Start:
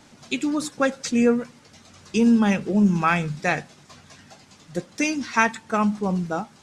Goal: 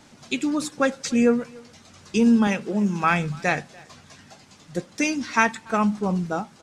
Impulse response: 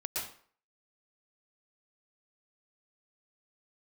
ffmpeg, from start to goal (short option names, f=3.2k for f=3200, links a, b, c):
-filter_complex "[0:a]asettb=1/sr,asplit=3[a][b][c];[a]atrim=end=2.474[d];[b]atrim=start=2.47:end=3.04,asetpts=PTS-STARTPTS,afade=t=in:d=0.004:c=qsin,afade=t=out:st=0.566:d=0.004:c=qsin,highpass=f=280:p=1[e];[c]atrim=start=3.036[f];[d][e]acrossfade=d=0.004:c1=hsin:c2=qsin[g];[g][f]acrossfade=d=0.004:c1=qsin:c2=hsin,asplit=2[h][i];[i]adelay=290,highpass=300,lowpass=3.4k,asoftclip=type=hard:threshold=-14.5dB,volume=-23dB[j];[h][j]amix=inputs=2:normalize=0"